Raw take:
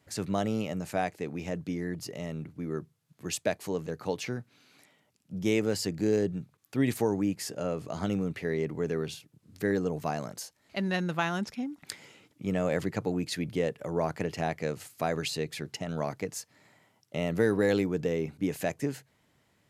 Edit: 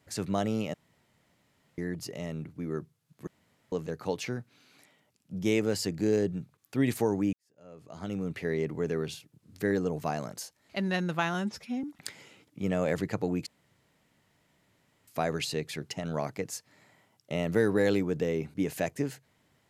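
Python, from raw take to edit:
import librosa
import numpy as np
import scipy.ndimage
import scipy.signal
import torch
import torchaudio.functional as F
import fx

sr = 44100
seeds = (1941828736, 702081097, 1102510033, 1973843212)

y = fx.edit(x, sr, fx.room_tone_fill(start_s=0.74, length_s=1.04),
    fx.room_tone_fill(start_s=3.27, length_s=0.45),
    fx.fade_in_span(start_s=7.33, length_s=1.05, curve='qua'),
    fx.stretch_span(start_s=11.34, length_s=0.33, factor=1.5),
    fx.room_tone_fill(start_s=13.3, length_s=1.61), tone=tone)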